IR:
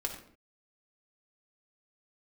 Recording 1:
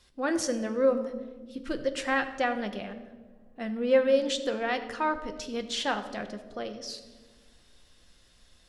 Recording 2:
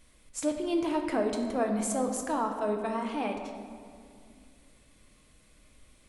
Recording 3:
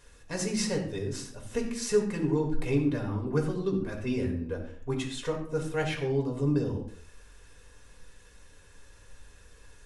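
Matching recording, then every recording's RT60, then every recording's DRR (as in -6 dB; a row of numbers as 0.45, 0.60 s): 3; not exponential, 2.3 s, 0.55 s; 6.5, 2.5, 0.5 dB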